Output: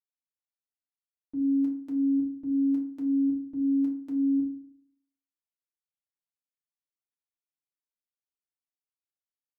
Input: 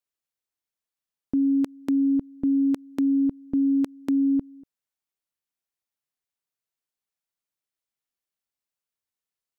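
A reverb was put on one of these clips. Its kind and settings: FDN reverb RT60 0.49 s, low-frequency decay 1.4×, high-frequency decay 0.5×, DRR -3.5 dB; trim -20.5 dB

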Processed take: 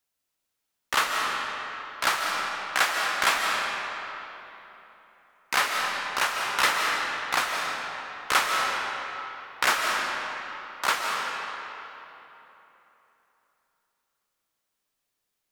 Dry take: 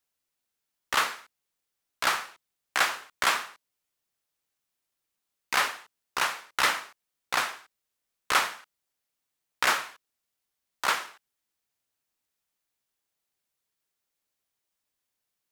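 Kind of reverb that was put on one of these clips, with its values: algorithmic reverb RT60 3.4 s, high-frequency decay 0.7×, pre-delay 110 ms, DRR 0 dB; trim +1 dB

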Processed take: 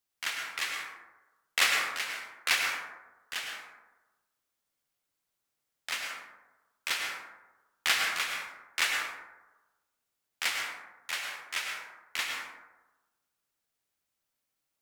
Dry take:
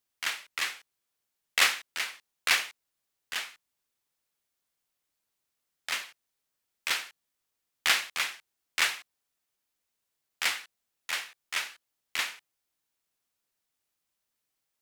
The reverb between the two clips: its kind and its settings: plate-style reverb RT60 1.1 s, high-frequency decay 0.35×, pre-delay 90 ms, DRR 1 dB; trim -2.5 dB

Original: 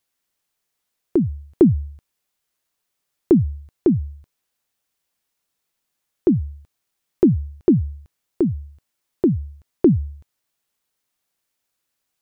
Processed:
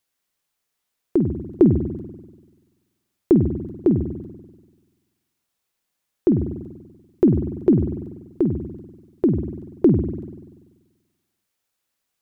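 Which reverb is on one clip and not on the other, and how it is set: spring tank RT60 1.3 s, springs 48 ms, chirp 20 ms, DRR 6.5 dB; trim -1 dB

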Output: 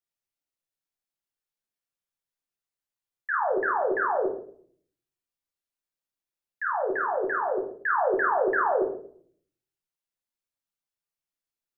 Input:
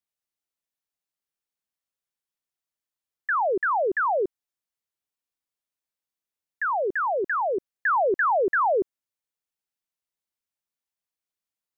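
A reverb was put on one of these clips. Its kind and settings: simulated room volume 75 m³, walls mixed, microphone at 0.79 m; trim -5.5 dB

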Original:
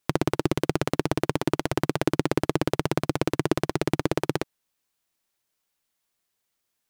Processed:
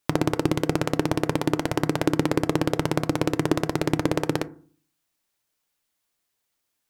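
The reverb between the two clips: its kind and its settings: FDN reverb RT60 0.45 s, low-frequency decay 1.35×, high-frequency decay 0.35×, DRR 12.5 dB; trim +1 dB

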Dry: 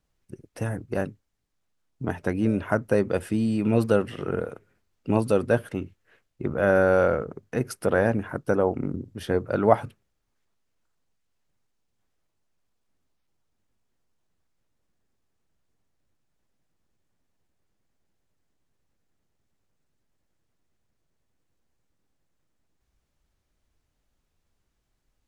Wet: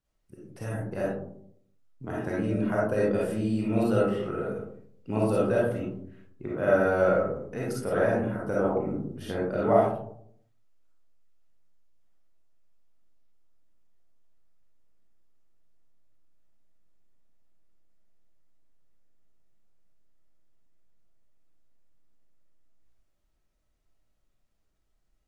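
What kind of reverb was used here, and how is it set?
algorithmic reverb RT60 0.67 s, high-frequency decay 0.3×, pre-delay 10 ms, DRR -6 dB; trim -9.5 dB

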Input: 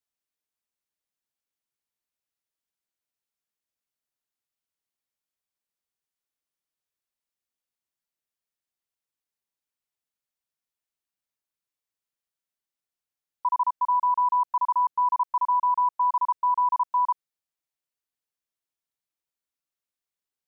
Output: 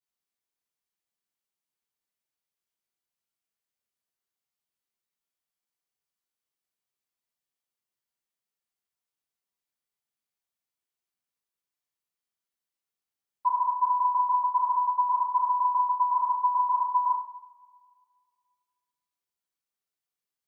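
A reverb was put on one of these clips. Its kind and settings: two-slope reverb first 0.5 s, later 2 s, from -20 dB, DRR -10 dB; trim -11 dB

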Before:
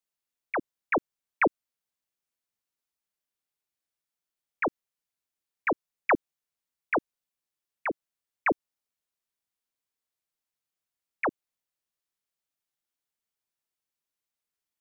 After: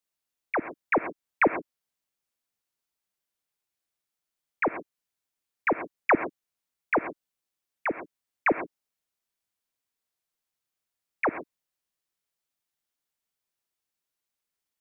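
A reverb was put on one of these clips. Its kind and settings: gated-style reverb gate 150 ms rising, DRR 11 dB; trim +2 dB

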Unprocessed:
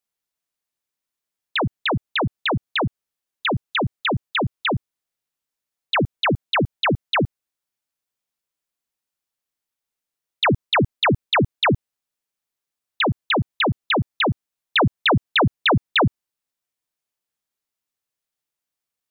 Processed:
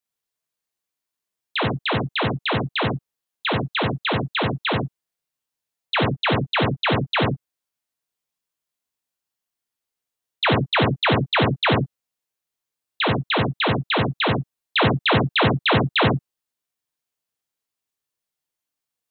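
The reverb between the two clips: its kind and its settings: gated-style reverb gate 120 ms flat, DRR 0 dB; trim -3 dB

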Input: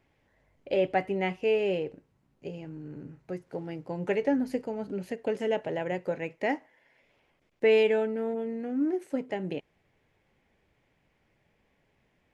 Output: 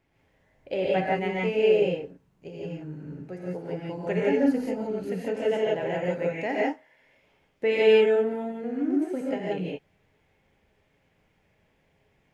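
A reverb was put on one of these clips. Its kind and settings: gated-style reverb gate 200 ms rising, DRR -4.5 dB; trim -2.5 dB

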